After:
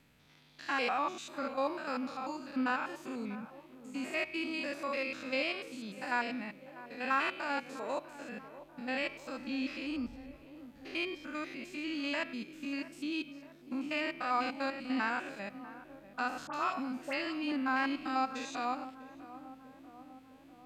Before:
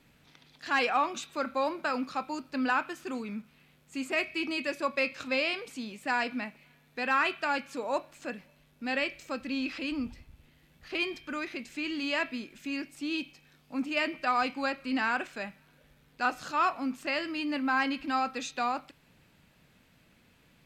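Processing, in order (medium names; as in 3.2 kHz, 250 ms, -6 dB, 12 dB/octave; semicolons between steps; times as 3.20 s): spectrogram pixelated in time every 100 ms; 16.47–17.52 s: phase dispersion highs, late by 67 ms, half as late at 1.7 kHz; tape echo 645 ms, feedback 79%, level -13 dB, low-pass 1 kHz; trim -2 dB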